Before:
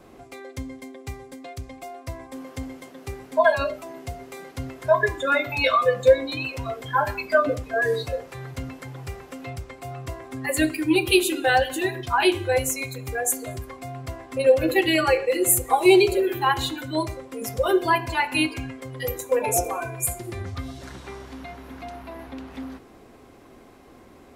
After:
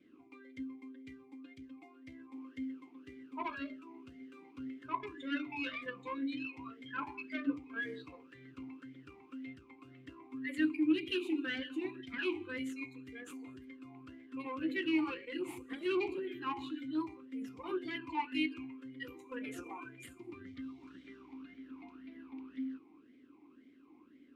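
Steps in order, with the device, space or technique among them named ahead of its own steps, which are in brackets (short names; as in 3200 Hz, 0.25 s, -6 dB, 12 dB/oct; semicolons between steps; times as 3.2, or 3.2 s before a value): talk box (tube stage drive 16 dB, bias 0.65; vowel sweep i-u 1.9 Hz); gain +1 dB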